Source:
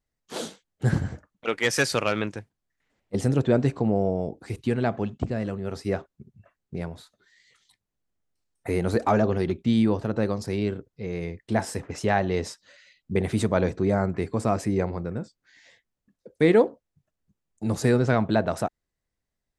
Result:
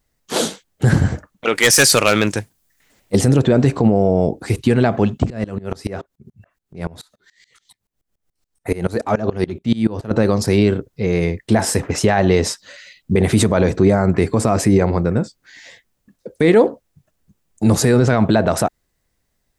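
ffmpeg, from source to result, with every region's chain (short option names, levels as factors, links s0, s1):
-filter_complex "[0:a]asettb=1/sr,asplit=3[s0][s1][s2];[s0]atrim=end=1.554[s3];[s1]atrim=start=1.55:end=3.19,asetpts=PTS-STARTPTS,afade=t=in:d=0.004:c=qsin,afade=t=out:st=1.636:d=0.004:c=qsin,highshelf=f=4600:g=11.5,volume=5.62,asoftclip=hard,volume=0.178[s4];[s2]atrim=start=3.186[s5];[s3][s4]acrossfade=d=0.004:c1=hsin:c2=qsin[s6];[s6][s5]acrossfade=d=0.004:c1=qsin:c2=hsin,asettb=1/sr,asplit=3[s7][s8][s9];[s7]atrim=end=5.304[s10];[s8]atrim=start=5.3:end=10.11,asetpts=PTS-STARTPTS,afade=t=in:d=0.004:c=qsin,afade=t=out:st=4.806:d=0.004:c=qsin,acompressor=threshold=0.0501:ratio=1.5:attack=3.2:release=140:knee=1:detection=peak,aeval=exprs='val(0)*pow(10,-23*if(lt(mod(-7*n/s,1),2*abs(-7)/1000),1-mod(-7*n/s,1)/(2*abs(-7)/1000),(mod(-7*n/s,1)-2*abs(-7)/1000)/(1-2*abs(-7)/1000))/20)':c=same[s11];[s9]atrim=start=10.106[s12];[s10][s11]acrossfade=d=0.004:c1=hsin:c2=qsin[s13];[s13][s12]acrossfade=d=0.004:c1=qsin:c2=hsin,highshelf=f=8700:g=5.5,alimiter=level_in=6.68:limit=0.891:release=50:level=0:latency=1,volume=0.708"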